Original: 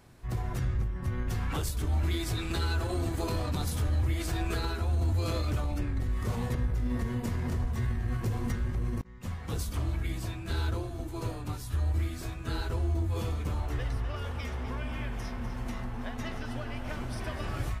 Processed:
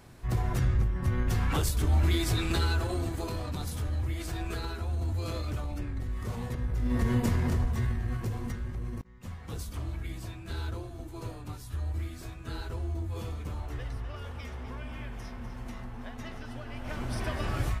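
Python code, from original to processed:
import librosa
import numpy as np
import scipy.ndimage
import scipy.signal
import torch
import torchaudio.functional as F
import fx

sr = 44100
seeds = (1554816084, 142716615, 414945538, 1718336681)

y = fx.gain(x, sr, db=fx.line((2.48, 4.0), (3.33, -3.5), (6.59, -3.5), (7.13, 6.5), (8.6, -4.5), (16.64, -4.5), (17.14, 3.0)))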